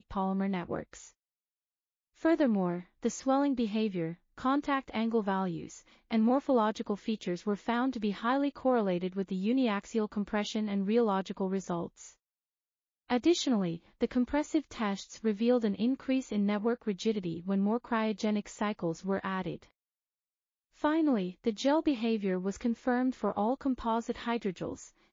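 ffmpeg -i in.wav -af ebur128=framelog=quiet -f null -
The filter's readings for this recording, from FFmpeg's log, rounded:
Integrated loudness:
  I:         -31.4 LUFS
  Threshold: -41.7 LUFS
Loudness range:
  LRA:         2.8 LU
  Threshold: -51.9 LUFS
  LRA low:   -33.6 LUFS
  LRA high:  -30.8 LUFS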